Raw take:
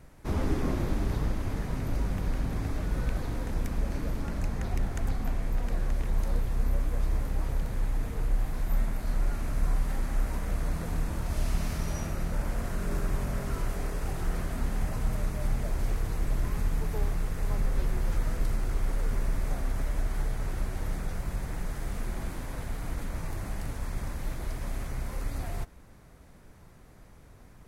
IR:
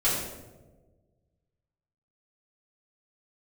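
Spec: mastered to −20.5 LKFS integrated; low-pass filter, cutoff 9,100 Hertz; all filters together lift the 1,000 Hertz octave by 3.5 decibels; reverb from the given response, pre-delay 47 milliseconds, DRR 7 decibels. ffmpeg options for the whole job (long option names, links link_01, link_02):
-filter_complex "[0:a]lowpass=9100,equalizer=frequency=1000:width_type=o:gain=4.5,asplit=2[link_01][link_02];[1:a]atrim=start_sample=2205,adelay=47[link_03];[link_02][link_03]afir=irnorm=-1:irlink=0,volume=-19dB[link_04];[link_01][link_04]amix=inputs=2:normalize=0,volume=9.5dB"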